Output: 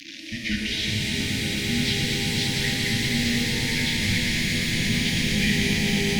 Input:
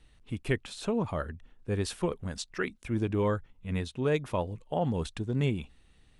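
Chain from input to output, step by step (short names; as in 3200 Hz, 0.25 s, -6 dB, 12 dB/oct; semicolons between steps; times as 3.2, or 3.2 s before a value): delta modulation 32 kbps, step -42 dBFS; EQ curve 110 Hz 0 dB, 400 Hz -5 dB, 1500 Hz -26 dB, 2200 Hz +15 dB; swelling echo 0.115 s, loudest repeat 8, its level -9 dB; frequency shift -340 Hz; shimmer reverb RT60 3.5 s, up +12 st, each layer -8 dB, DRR -1.5 dB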